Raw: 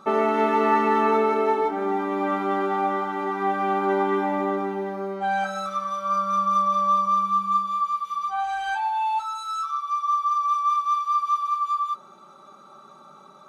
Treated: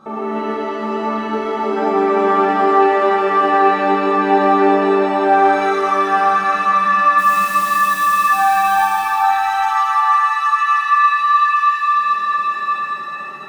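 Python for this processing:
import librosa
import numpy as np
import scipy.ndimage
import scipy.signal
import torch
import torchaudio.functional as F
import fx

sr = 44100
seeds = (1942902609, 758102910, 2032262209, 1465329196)

y = fx.high_shelf(x, sr, hz=2200.0, db=-7.5)
y = fx.over_compress(y, sr, threshold_db=-25.0, ratio=-0.5)
y = fx.quant_dither(y, sr, seeds[0], bits=6, dither='none', at=(7.17, 8.15), fade=0.02)
y = y + 10.0 ** (-3.5 / 20.0) * np.pad(y, (int(815 * sr / 1000.0), 0))[:len(y)]
y = fx.rev_shimmer(y, sr, seeds[1], rt60_s=2.6, semitones=7, shimmer_db=-8, drr_db=-8.0)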